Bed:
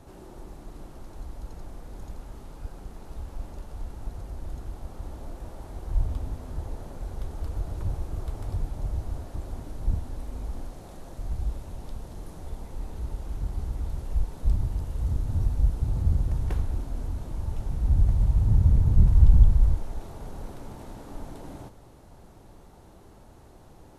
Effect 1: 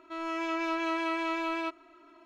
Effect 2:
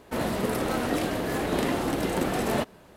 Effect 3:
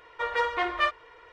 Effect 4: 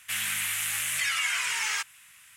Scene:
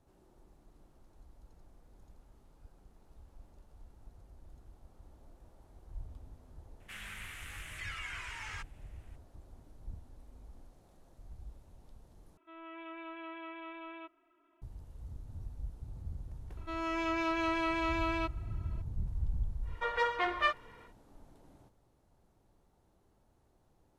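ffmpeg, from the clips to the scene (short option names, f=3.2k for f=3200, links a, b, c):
-filter_complex "[1:a]asplit=2[a][b];[0:a]volume=-19dB[c];[4:a]lowpass=f=1.1k:p=1[d];[a]aresample=8000,aresample=44100[e];[c]asplit=2[f][g];[f]atrim=end=12.374[h];[e]atrim=end=2.25,asetpts=PTS-STARTPTS,volume=-14.5dB[i];[g]atrim=start=14.616[j];[d]atrim=end=2.36,asetpts=PTS-STARTPTS,volume=-7.5dB,afade=t=in:d=0.004:c=hsin,afade=t=out:st=2.356:d=0.004:c=hsin,adelay=6800[k];[b]atrim=end=2.25,asetpts=PTS-STARTPTS,volume=-1.5dB,afade=t=in:d=0.004:c=hsin,afade=t=out:st=2.246:d=0.004:c=hsin,adelay=16570[l];[3:a]atrim=end=1.32,asetpts=PTS-STARTPTS,volume=-4.5dB,afade=t=in:d=0.1,afade=t=out:st=1.22:d=0.1,adelay=19620[m];[h][i]acrossfade=d=0.004:c1=hsin:c2=hsin[n];[n][j]acrossfade=d=0.004:c1=hsin:c2=hsin[o];[o][k][l][m]amix=inputs=4:normalize=0"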